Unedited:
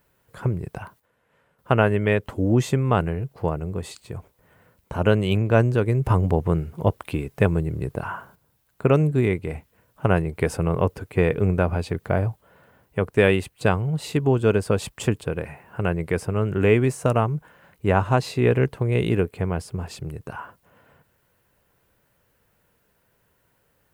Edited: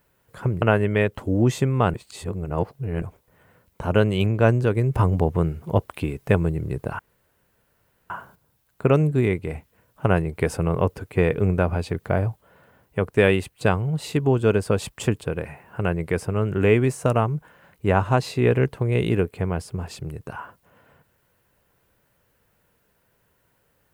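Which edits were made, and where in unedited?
0:00.62–0:01.73: remove
0:03.05–0:04.13: reverse
0:08.10: splice in room tone 1.11 s

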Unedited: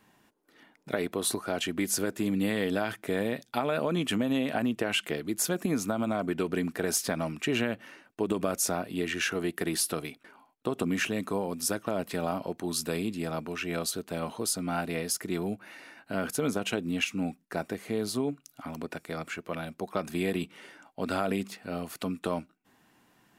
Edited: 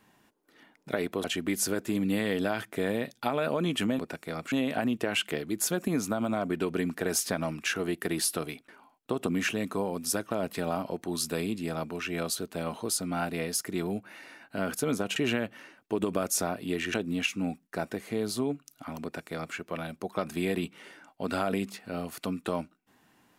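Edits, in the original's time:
0:01.24–0:01.55: remove
0:07.44–0:09.22: move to 0:16.72
0:18.81–0:19.34: duplicate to 0:04.30

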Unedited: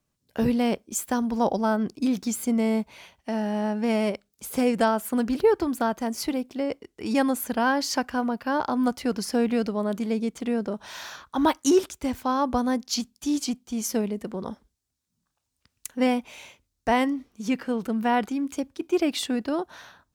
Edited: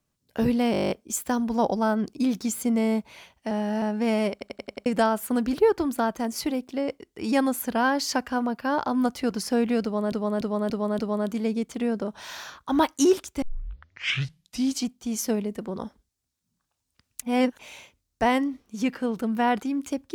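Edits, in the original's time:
0:00.72: stutter 0.02 s, 10 plays
0:03.33–0:03.64: reverse
0:04.14: stutter in place 0.09 s, 6 plays
0:09.65–0:09.94: repeat, 5 plays
0:12.08: tape start 1.38 s
0:15.88–0:16.25: reverse

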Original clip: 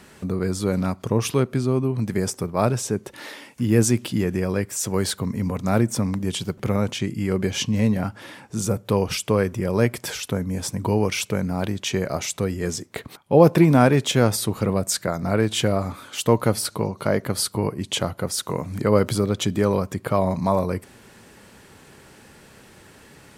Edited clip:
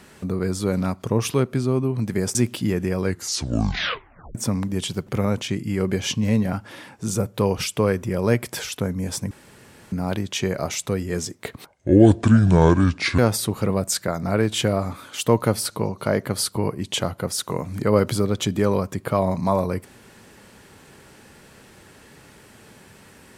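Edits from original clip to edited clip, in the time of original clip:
0:02.35–0:03.86: remove
0:04.52: tape stop 1.34 s
0:10.82–0:11.43: fill with room tone
0:13.18–0:14.18: play speed 66%

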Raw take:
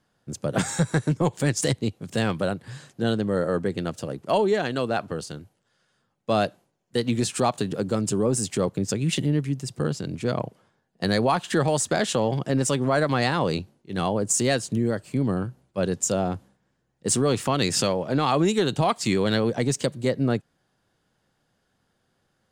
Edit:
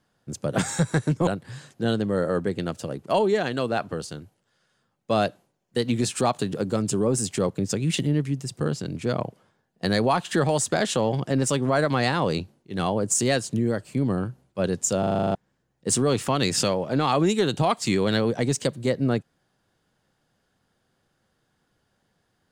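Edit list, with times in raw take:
0:01.27–0:02.46: remove
0:16.18: stutter in place 0.04 s, 9 plays

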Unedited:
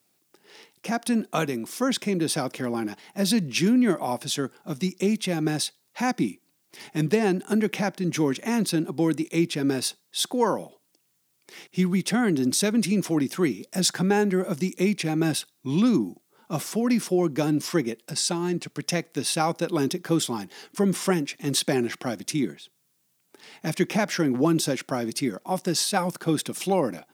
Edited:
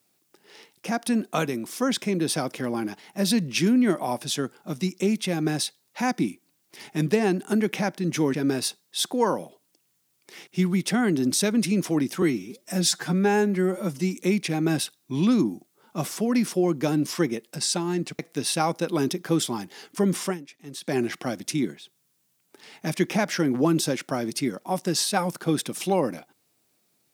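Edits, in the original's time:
0:08.34–0:09.54: remove
0:13.42–0:14.72: time-stretch 1.5×
0:18.74–0:18.99: remove
0:21.01–0:21.78: duck −14 dB, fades 0.17 s

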